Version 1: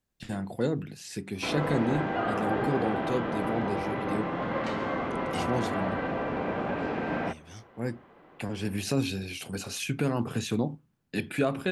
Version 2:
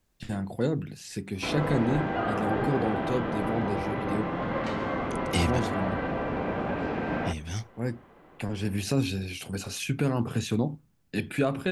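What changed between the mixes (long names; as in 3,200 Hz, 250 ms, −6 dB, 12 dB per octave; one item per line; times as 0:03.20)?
second voice +10.5 dB
master: add low-shelf EQ 83 Hz +10.5 dB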